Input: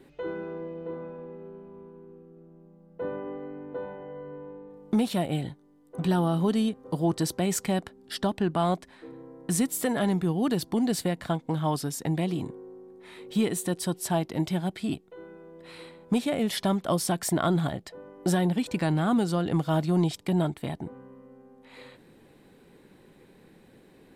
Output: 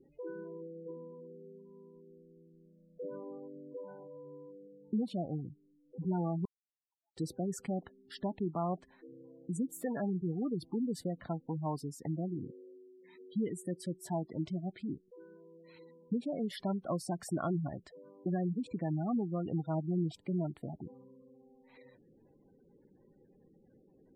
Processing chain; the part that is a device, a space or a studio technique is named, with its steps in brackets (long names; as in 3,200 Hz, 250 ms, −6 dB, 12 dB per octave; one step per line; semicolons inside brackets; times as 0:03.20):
gate on every frequency bin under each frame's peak −15 dB strong
0:06.45–0:07.17: elliptic high-pass filter 2,000 Hz, stop band 80 dB
behind a face mask (high-shelf EQ 3,400 Hz −7.5 dB)
level −8.5 dB